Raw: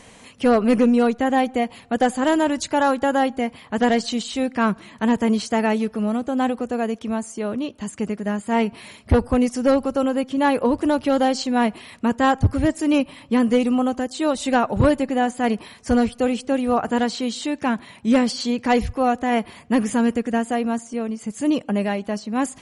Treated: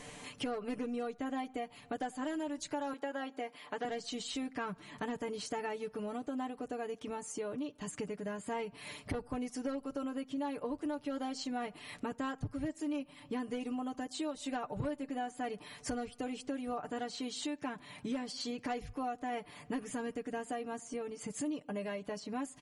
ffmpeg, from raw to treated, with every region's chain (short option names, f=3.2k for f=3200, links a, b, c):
-filter_complex "[0:a]asettb=1/sr,asplit=3[a][b][c];[a]atrim=end=2.934[d];[b]atrim=start=2.93:end=3.85,asetpts=PTS-STARTPTS,afade=t=in:d=0.004:c=qsin,afade=t=out:st=0.916:d=0.004:c=qsin,acrossover=split=5000[e][f];[f]acompressor=threshold=-53dB:ratio=4:attack=1:release=60[g];[e][g]amix=inputs=2:normalize=0,highpass=340[h];[c]atrim=start=3.846[i];[d][h]acrossfade=d=0.004:c1=hsin:c2=qsin[j];[j][i]acrossfade=d=0.004:c1=qsin:c2=hsin,aecho=1:1:6.8:0.75,acompressor=threshold=-34dB:ratio=4,volume=-4.5dB"